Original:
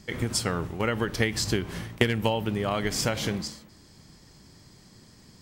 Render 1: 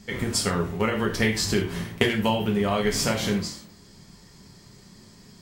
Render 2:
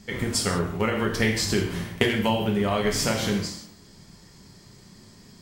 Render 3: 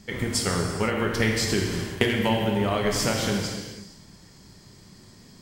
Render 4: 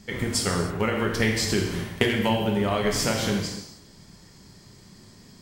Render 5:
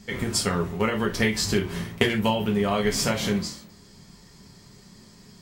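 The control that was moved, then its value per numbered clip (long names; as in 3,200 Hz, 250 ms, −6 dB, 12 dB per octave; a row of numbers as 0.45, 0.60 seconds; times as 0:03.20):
reverb whose tail is shaped and stops, gate: 130, 210, 530, 330, 90 milliseconds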